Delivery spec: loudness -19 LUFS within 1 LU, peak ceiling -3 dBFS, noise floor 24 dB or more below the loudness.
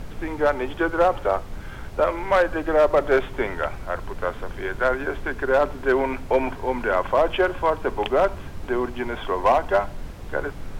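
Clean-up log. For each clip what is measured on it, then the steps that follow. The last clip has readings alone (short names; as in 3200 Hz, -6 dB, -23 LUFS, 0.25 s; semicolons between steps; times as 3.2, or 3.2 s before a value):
clipped 0.5%; flat tops at -11.0 dBFS; noise floor -37 dBFS; noise floor target -48 dBFS; loudness -23.5 LUFS; peak -11.0 dBFS; loudness target -19.0 LUFS
-> clip repair -11 dBFS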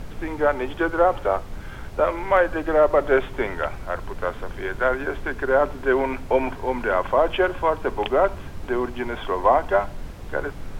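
clipped 0.0%; noise floor -37 dBFS; noise floor target -47 dBFS
-> noise print and reduce 10 dB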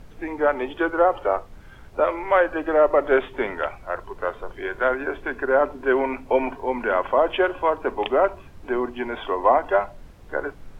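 noise floor -45 dBFS; noise floor target -47 dBFS
-> noise print and reduce 6 dB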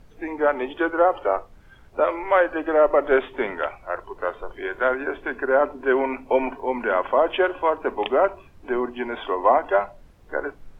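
noise floor -50 dBFS; loudness -23.0 LUFS; peak -6.0 dBFS; loudness target -19.0 LUFS
-> gain +4 dB; limiter -3 dBFS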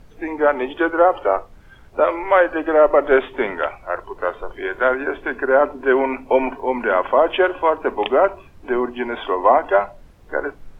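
loudness -19.0 LUFS; peak -3.0 dBFS; noise floor -46 dBFS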